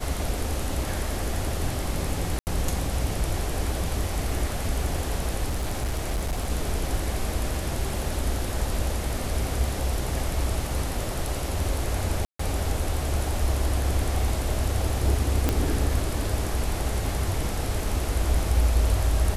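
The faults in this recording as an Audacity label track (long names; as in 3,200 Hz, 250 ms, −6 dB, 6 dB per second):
2.390000	2.470000	drop-out 79 ms
5.470000	6.500000	clipping −22.5 dBFS
12.250000	12.390000	drop-out 144 ms
15.490000	15.490000	click −7 dBFS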